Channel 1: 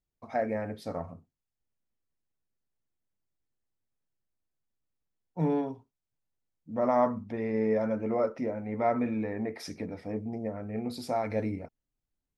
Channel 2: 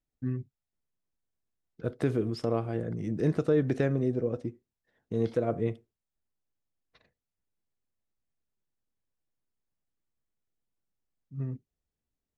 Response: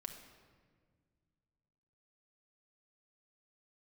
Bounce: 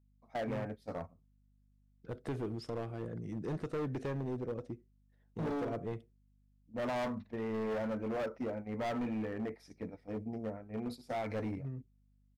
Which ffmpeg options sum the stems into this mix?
-filter_complex "[0:a]agate=range=-15dB:threshold=-36dB:ratio=16:detection=peak,aeval=exprs='val(0)+0.000631*(sin(2*PI*50*n/s)+sin(2*PI*2*50*n/s)/2+sin(2*PI*3*50*n/s)/3+sin(2*PI*4*50*n/s)/4+sin(2*PI*5*50*n/s)/5)':c=same,volume=-4dB[a];[1:a]adelay=250,volume=-7.5dB[b];[a][b]amix=inputs=2:normalize=0,asoftclip=type=hard:threshold=-33dB"

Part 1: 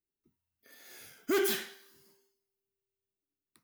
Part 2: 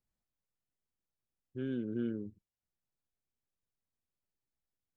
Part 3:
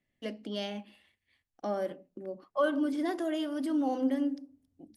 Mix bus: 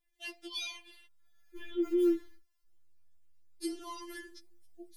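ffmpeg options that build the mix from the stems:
-filter_complex "[0:a]highpass=f=930:w=0.5412,highpass=f=930:w=1.3066,tiltshelf=f=1.3k:g=8,acompressor=threshold=-41dB:ratio=6,adelay=550,volume=-14dB[a];[1:a]volume=2dB,asplit=2[b][c];[2:a]highshelf=f=3.5k:g=11.5,volume=-5.5dB,asplit=3[d][e][f];[d]atrim=end=1.06,asetpts=PTS-STARTPTS,afade=t=out:st=1.056:d=0.004:c=hsin[g];[e]atrim=start=1.06:end=3.63,asetpts=PTS-STARTPTS,volume=0[h];[f]atrim=start=3.63,asetpts=PTS-STARTPTS,afade=t=in:d=0.004:c=hsin[i];[g][h][i]concat=n=3:v=0:a=1[j];[c]apad=whole_len=184419[k];[a][k]sidechaingate=range=-10dB:threshold=-50dB:ratio=16:detection=peak[l];[l][b][j]amix=inputs=3:normalize=0,dynaudnorm=f=110:g=3:m=7.5dB,asubboost=boost=8:cutoff=170,afftfilt=real='re*4*eq(mod(b,16),0)':imag='im*4*eq(mod(b,16),0)':win_size=2048:overlap=0.75"

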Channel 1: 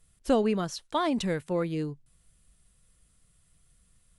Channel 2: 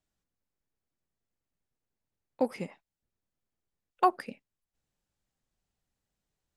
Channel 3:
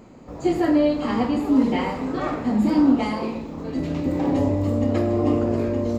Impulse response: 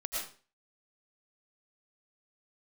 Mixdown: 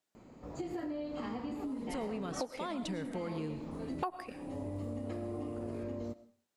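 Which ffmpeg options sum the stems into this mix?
-filter_complex "[0:a]alimiter=limit=-24dB:level=0:latency=1,adelay=1650,volume=-3.5dB,asplit=2[a][b];[b]volume=-10.5dB[c];[1:a]highpass=280,volume=1dB,asplit=3[d][e][f];[e]volume=-15dB[g];[2:a]acompressor=threshold=-25dB:ratio=6,adelay=150,volume=-10dB,asplit=2[h][i];[i]volume=-19dB[j];[f]apad=whole_len=270735[k];[h][k]sidechaincompress=threshold=-44dB:ratio=8:attack=16:release=320[l];[3:a]atrim=start_sample=2205[m];[c][g][j]amix=inputs=3:normalize=0[n];[n][m]afir=irnorm=-1:irlink=0[o];[a][d][l][o]amix=inputs=4:normalize=0,acompressor=threshold=-35dB:ratio=5"

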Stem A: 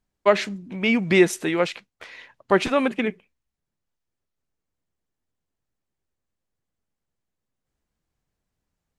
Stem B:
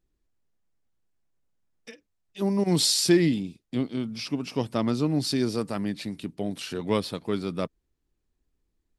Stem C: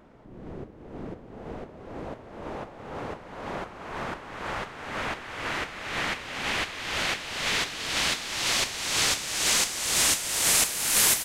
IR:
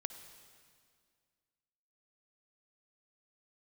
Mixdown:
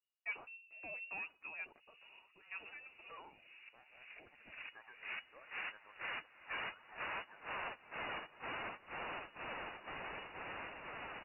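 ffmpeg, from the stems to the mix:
-filter_complex "[0:a]volume=-19.5dB[a];[1:a]asoftclip=type=tanh:threshold=-16.5dB,highpass=f=1.4k:w=0.5412,highpass=f=1.4k:w=1.3066,deesser=0.85,volume=-10dB,asplit=2[b][c];[2:a]agate=range=-20dB:threshold=-32dB:ratio=16:detection=peak,acompressor=threshold=-31dB:ratio=4,adelay=1550,volume=1dB[d];[c]apad=whole_len=396196[e];[a][e]sidechaincompress=threshold=-59dB:ratio=4:attack=16:release=479[f];[f][b][d]amix=inputs=3:normalize=0,asoftclip=type=tanh:threshold=-33.5dB,flanger=delay=1.5:depth=4.9:regen=55:speed=0.61:shape=triangular,lowpass=f=2.5k:t=q:w=0.5098,lowpass=f=2.5k:t=q:w=0.6013,lowpass=f=2.5k:t=q:w=0.9,lowpass=f=2.5k:t=q:w=2.563,afreqshift=-2900"

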